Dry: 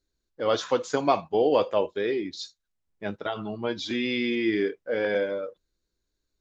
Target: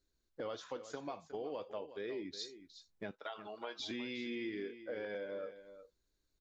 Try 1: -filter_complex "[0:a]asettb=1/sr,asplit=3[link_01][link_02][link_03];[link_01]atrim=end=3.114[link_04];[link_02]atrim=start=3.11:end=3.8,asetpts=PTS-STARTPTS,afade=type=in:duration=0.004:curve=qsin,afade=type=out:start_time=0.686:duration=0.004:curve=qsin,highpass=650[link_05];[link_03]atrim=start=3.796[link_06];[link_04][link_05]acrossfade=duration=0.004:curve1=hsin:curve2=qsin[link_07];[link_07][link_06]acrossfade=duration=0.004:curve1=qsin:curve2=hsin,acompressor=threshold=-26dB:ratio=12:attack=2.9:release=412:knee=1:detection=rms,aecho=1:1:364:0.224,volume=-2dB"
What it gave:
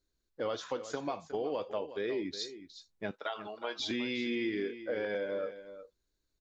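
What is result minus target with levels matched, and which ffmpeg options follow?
downward compressor: peak gain reduction −7.5 dB
-filter_complex "[0:a]asettb=1/sr,asplit=3[link_01][link_02][link_03];[link_01]atrim=end=3.114[link_04];[link_02]atrim=start=3.11:end=3.8,asetpts=PTS-STARTPTS,afade=type=in:duration=0.004:curve=qsin,afade=type=out:start_time=0.686:duration=0.004:curve=qsin,highpass=650[link_05];[link_03]atrim=start=3.796[link_06];[link_04][link_05]acrossfade=duration=0.004:curve1=hsin:curve2=qsin[link_07];[link_07][link_06]acrossfade=duration=0.004:curve1=qsin:curve2=hsin,acompressor=threshold=-34dB:ratio=12:attack=2.9:release=412:knee=1:detection=rms,aecho=1:1:364:0.224,volume=-2dB"

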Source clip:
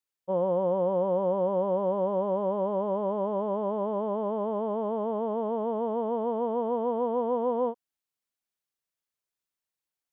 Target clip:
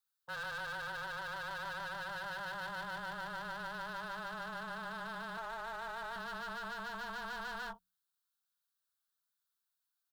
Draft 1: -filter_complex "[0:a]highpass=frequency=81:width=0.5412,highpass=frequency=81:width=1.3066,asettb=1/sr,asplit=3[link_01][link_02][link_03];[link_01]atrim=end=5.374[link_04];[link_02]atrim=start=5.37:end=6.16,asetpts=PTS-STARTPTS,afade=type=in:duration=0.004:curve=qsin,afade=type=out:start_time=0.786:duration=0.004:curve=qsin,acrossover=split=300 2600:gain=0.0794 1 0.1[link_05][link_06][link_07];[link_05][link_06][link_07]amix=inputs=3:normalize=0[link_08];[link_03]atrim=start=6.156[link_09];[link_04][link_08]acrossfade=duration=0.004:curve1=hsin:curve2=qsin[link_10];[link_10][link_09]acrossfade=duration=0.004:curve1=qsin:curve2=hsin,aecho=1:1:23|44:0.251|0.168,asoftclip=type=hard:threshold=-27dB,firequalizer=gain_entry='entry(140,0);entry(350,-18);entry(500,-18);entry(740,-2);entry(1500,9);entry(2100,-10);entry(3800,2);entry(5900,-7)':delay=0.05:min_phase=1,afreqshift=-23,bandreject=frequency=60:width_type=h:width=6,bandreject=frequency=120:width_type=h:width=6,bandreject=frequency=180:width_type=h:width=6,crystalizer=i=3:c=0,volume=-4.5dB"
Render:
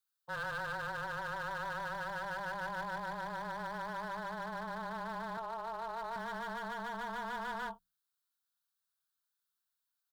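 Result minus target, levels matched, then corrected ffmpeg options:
hard clipping: distortion −4 dB
-filter_complex "[0:a]highpass=frequency=81:width=0.5412,highpass=frequency=81:width=1.3066,asettb=1/sr,asplit=3[link_01][link_02][link_03];[link_01]atrim=end=5.374[link_04];[link_02]atrim=start=5.37:end=6.16,asetpts=PTS-STARTPTS,afade=type=in:duration=0.004:curve=qsin,afade=type=out:start_time=0.786:duration=0.004:curve=qsin,acrossover=split=300 2600:gain=0.0794 1 0.1[link_05][link_06][link_07];[link_05][link_06][link_07]amix=inputs=3:normalize=0[link_08];[link_03]atrim=start=6.156[link_09];[link_04][link_08]acrossfade=duration=0.004:curve1=hsin:curve2=qsin[link_10];[link_10][link_09]acrossfade=duration=0.004:curve1=qsin:curve2=hsin,aecho=1:1:23|44:0.251|0.168,asoftclip=type=hard:threshold=-33dB,firequalizer=gain_entry='entry(140,0);entry(350,-18);entry(500,-18);entry(740,-2);entry(1500,9);entry(2100,-10);entry(3800,2);entry(5900,-7)':delay=0.05:min_phase=1,afreqshift=-23,bandreject=frequency=60:width_type=h:width=6,bandreject=frequency=120:width_type=h:width=6,bandreject=frequency=180:width_type=h:width=6,crystalizer=i=3:c=0,volume=-4.5dB"

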